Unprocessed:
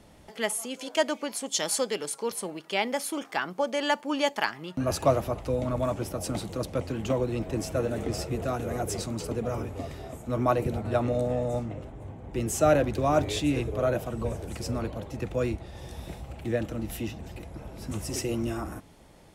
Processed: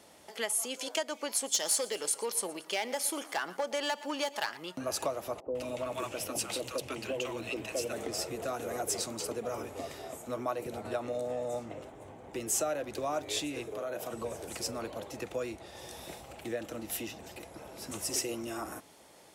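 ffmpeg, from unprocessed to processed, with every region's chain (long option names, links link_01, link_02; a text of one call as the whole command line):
ffmpeg -i in.wav -filter_complex "[0:a]asettb=1/sr,asplit=3[link_01][link_02][link_03];[link_01]atrim=end=1.294[link_04];[link_02]atrim=start=1.29:end=4.57,asetpts=PTS-STARTPTS,afade=type=in:duration=0.004:curve=qsin,afade=type=out:start_time=3.276:duration=0.004:curve=qsin,aeval=exprs='clip(val(0),-1,0.075)':channel_layout=same,aecho=1:1:117|234|351|468:0.1|0.047|0.0221|0.0104,atrim=end_sample=144648[link_05];[link_03]atrim=start=4.566[link_06];[link_04][link_05]acrossfade=duration=0.004:curve1=hsin:curve2=qsin[link_07];[link_07][link_06]acrossfade=duration=0.004:curve1=qsin:curve2=hsin,asettb=1/sr,asplit=3[link_08][link_09][link_10];[link_08]atrim=end=5.404[link_11];[link_09]atrim=start=5.4:end=7.93,asetpts=PTS-STARTPTS,afade=type=in:duration=0.004:curve=qsin,afade=type=out:start_time=2.526:duration=0.004:curve=qsin,equalizer=frequency=2700:width_type=o:width=0.43:gain=9.5,acrossover=split=200|750[link_12][link_13][link_14];[link_12]adelay=60[link_15];[link_14]adelay=150[link_16];[link_15][link_13][link_16]amix=inputs=3:normalize=0,atrim=end_sample=111573[link_17];[link_10]atrim=start=7.926[link_18];[link_11][link_17]acrossfade=duration=0.004:curve1=hsin:curve2=qsin[link_19];[link_19][link_18]acrossfade=duration=0.004:curve1=qsin:curve2=hsin,asettb=1/sr,asplit=3[link_20][link_21][link_22];[link_20]atrim=end=13.654[link_23];[link_21]atrim=start=13.65:end=14.13,asetpts=PTS-STARTPTS,afade=type=in:duration=0.004:curve=qsin,afade=type=out:start_time=0.476:duration=0.004:curve=qsin,highpass=110,acompressor=threshold=-32dB:ratio=5:attack=3.2:release=140:knee=1:detection=peak,asplit=2[link_24][link_25];[link_25]adelay=35,volume=-12dB[link_26];[link_24][link_26]amix=inputs=2:normalize=0,atrim=end_sample=21168[link_27];[link_22]atrim=start=14.126[link_28];[link_23][link_27]acrossfade=duration=0.004:curve1=hsin:curve2=qsin[link_29];[link_29][link_28]acrossfade=duration=0.004:curve1=qsin:curve2=hsin,highpass=70,acompressor=threshold=-29dB:ratio=6,bass=frequency=250:gain=-14,treble=frequency=4000:gain=5" out.wav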